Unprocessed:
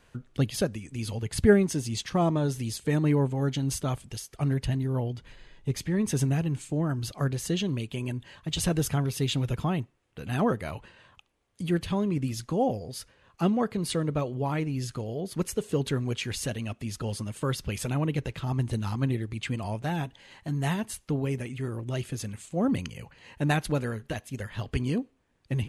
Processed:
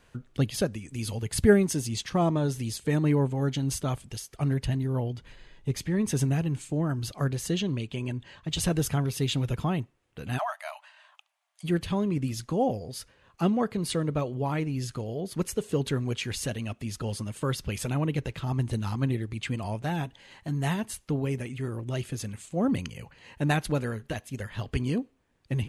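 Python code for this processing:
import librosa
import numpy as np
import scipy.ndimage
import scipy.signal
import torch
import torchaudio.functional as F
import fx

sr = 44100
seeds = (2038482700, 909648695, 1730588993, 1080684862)

y = fx.high_shelf(x, sr, hz=7800.0, db=7.0, at=(0.88, 1.87))
y = fx.lowpass(y, sr, hz=7500.0, slope=12, at=(7.6, 8.51))
y = fx.brickwall_highpass(y, sr, low_hz=580.0, at=(10.37, 11.63), fade=0.02)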